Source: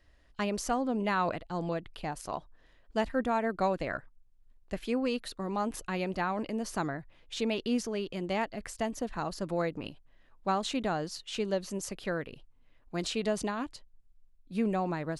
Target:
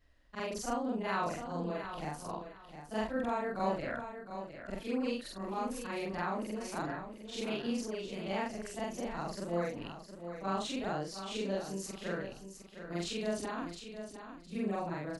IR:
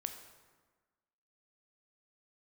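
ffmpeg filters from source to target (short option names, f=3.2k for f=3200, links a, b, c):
-af "afftfilt=real='re':imag='-im':win_size=4096:overlap=0.75,aecho=1:1:710|1420|2130:0.335|0.077|0.0177"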